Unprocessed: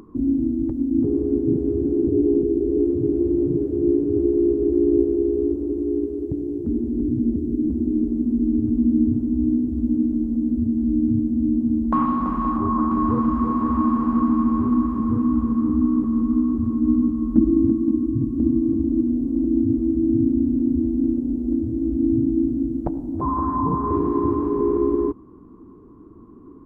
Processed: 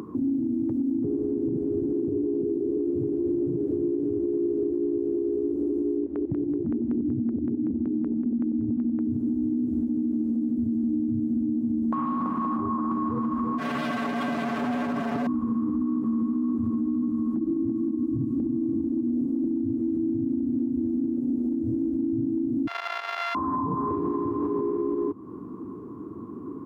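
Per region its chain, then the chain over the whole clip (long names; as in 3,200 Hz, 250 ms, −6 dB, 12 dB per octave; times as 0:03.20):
0:05.97–0:09.00: auto-filter notch square 5.3 Hz 430–1,500 Hz + high-frequency loss of the air 340 metres
0:13.58–0:15.27: lower of the sound and its delayed copy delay 4.5 ms + gain into a clipping stage and back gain 27 dB + comb filter 7 ms, depth 74%
0:22.67–0:23.35: samples sorted by size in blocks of 64 samples + high-pass filter 980 Hz 24 dB per octave + high-frequency loss of the air 300 metres
whole clip: high-pass filter 100 Hz 24 dB per octave; downward compressor 4 to 1, threshold −30 dBFS; brickwall limiter −27 dBFS; level +7.5 dB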